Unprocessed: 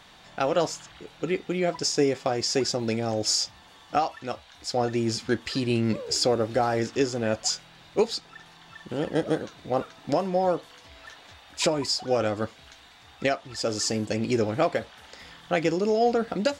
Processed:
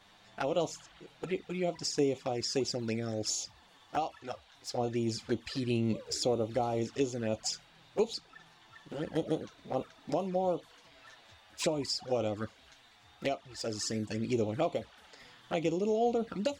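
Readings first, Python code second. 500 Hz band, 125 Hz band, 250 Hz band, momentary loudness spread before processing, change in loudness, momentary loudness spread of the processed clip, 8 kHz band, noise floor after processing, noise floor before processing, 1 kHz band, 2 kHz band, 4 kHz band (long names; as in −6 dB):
−7.0 dB, −6.0 dB, −6.5 dB, 12 LU, −7.0 dB, 11 LU, −8.0 dB, −61 dBFS, −52 dBFS, −8.5 dB, −10.5 dB, −9.0 dB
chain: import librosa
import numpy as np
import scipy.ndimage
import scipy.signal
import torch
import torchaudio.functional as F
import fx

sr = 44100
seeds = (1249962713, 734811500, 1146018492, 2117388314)

y = fx.env_flanger(x, sr, rest_ms=11.4, full_db=-21.5)
y = y * 10.0 ** (-5.5 / 20.0)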